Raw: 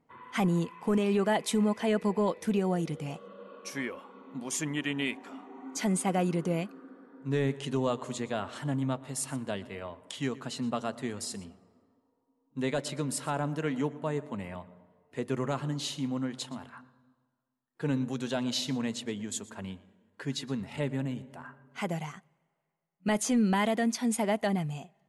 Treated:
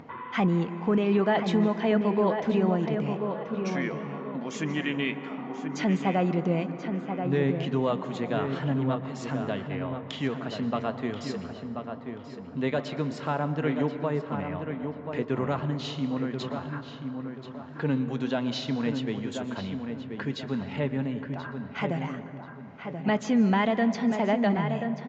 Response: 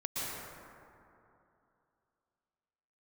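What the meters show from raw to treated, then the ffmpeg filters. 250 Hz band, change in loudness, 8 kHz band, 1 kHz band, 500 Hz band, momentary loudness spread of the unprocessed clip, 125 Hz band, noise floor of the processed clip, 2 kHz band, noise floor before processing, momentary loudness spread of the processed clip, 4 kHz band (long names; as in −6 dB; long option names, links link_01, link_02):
+4.0 dB, +3.0 dB, −12.0 dB, +4.0 dB, +4.0 dB, 15 LU, +4.0 dB, −42 dBFS, +3.5 dB, −76 dBFS, 12 LU, 0.0 dB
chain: -filter_complex "[0:a]lowpass=3200,acompressor=mode=upward:threshold=-34dB:ratio=2.5,highpass=41,asplit=2[link_01][link_02];[link_02]adelay=1033,lowpass=frequency=2300:poles=1,volume=-6.5dB,asplit=2[link_03][link_04];[link_04]adelay=1033,lowpass=frequency=2300:poles=1,volume=0.36,asplit=2[link_05][link_06];[link_06]adelay=1033,lowpass=frequency=2300:poles=1,volume=0.36,asplit=2[link_07][link_08];[link_08]adelay=1033,lowpass=frequency=2300:poles=1,volume=0.36[link_09];[link_01][link_03][link_05][link_07][link_09]amix=inputs=5:normalize=0,asplit=2[link_10][link_11];[1:a]atrim=start_sample=2205,adelay=26[link_12];[link_11][link_12]afir=irnorm=-1:irlink=0,volume=-17dB[link_13];[link_10][link_13]amix=inputs=2:normalize=0,volume=3dB" -ar 16000 -c:a libvorbis -b:a 96k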